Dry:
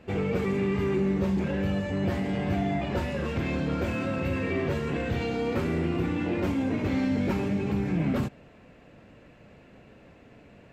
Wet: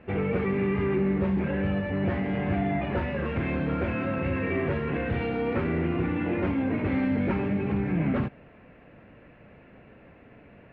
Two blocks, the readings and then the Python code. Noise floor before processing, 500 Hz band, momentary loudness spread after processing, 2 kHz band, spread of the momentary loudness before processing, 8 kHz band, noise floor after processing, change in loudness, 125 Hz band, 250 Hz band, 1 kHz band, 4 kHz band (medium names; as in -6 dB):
-54 dBFS, +0.5 dB, 3 LU, +2.0 dB, 3 LU, no reading, -53 dBFS, +0.5 dB, +0.5 dB, +0.5 dB, +1.5 dB, -5.0 dB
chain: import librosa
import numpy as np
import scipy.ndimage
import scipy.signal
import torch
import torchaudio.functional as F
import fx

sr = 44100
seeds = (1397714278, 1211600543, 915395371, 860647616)

y = fx.ladder_lowpass(x, sr, hz=2900.0, resonance_pct=25)
y = y * 10.0 ** (6.5 / 20.0)